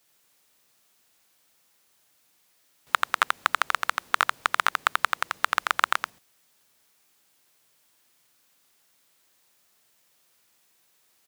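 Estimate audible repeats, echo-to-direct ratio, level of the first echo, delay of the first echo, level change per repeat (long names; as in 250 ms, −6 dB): 1, −3.0 dB, −3.0 dB, 86 ms, repeats not evenly spaced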